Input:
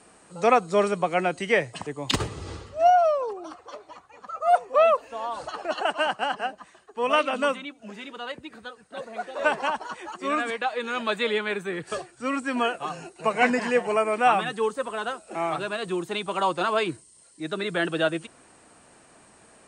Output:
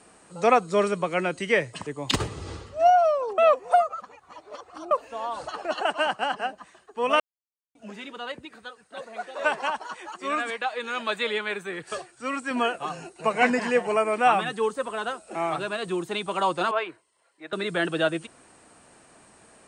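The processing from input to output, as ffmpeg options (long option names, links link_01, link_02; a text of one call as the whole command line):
ffmpeg -i in.wav -filter_complex "[0:a]asettb=1/sr,asplit=3[link_01][link_02][link_03];[link_01]atrim=end=0.624[link_04];[link_02]atrim=start=0.62:end=1.95,asetpts=PTS-STARTPTS,afade=type=in:duration=0.004:curve=qsin,afade=type=out:start_time=1.326:duration=0.004:curve=qsin,equalizer=frequency=750:width=5.8:gain=-9[link_05];[link_03]atrim=start=1.946[link_06];[link_04][link_05]acrossfade=duration=0.004:curve1=hsin:curve2=qsin[link_07];[link_07][link_06]acrossfade=duration=0.004:curve1=qsin:curve2=hsin,asettb=1/sr,asplit=3[link_08][link_09][link_10];[link_08]atrim=end=8.454[link_11];[link_09]atrim=start=8.45:end=12.51,asetpts=PTS-STARTPTS,afade=type=in:duration=0.004:curve=qsin,afade=type=out:start_time=4.056:duration=0.004:curve=qsin,lowshelf=frequency=420:gain=-7[link_12];[link_10]atrim=start=12.506[link_13];[link_11][link_12]acrossfade=duration=0.004:curve1=hsin:curve2=qsin[link_14];[link_14][link_13]acrossfade=duration=0.004:curve1=qsin:curve2=hsin,asettb=1/sr,asplit=3[link_15][link_16][link_17];[link_15]atrim=end=16.714[link_18];[link_16]atrim=start=16.71:end=17.53,asetpts=PTS-STARTPTS,afade=type=in:duration=0.004:curve=qsin,afade=type=out:start_time=0.816:duration=0.004:curve=qsin,acrossover=split=460 2900:gain=0.0794 1 0.1[link_19][link_20][link_21];[link_19][link_20][link_21]amix=inputs=3:normalize=0[link_22];[link_17]atrim=start=17.526[link_23];[link_18][link_22]acrossfade=duration=0.004:curve1=hsin:curve2=qsin[link_24];[link_24][link_23]acrossfade=duration=0.004:curve1=qsin:curve2=hsin,asplit=5[link_25][link_26][link_27][link_28][link_29];[link_25]atrim=end=3.382[link_30];[link_26]atrim=start=3.378:end=4.912,asetpts=PTS-STARTPTS,areverse[link_31];[link_27]atrim=start=4.908:end=7.2,asetpts=PTS-STARTPTS,afade=type=out:start_time=2.288:duration=0.004:curve=hsin[link_32];[link_28]atrim=start=7.2:end=7.75,asetpts=PTS-STARTPTS,volume=0[link_33];[link_29]atrim=start=7.75,asetpts=PTS-STARTPTS,afade=type=in:duration=0.004:curve=hsin[link_34];[link_30][link_31]acrossfade=duration=0.004:curve1=hsin:curve2=hsin[link_35];[link_32][link_33][link_34]concat=n=3:v=0:a=1[link_36];[link_35][link_36]acrossfade=duration=0.004:curve1=hsin:curve2=hsin" out.wav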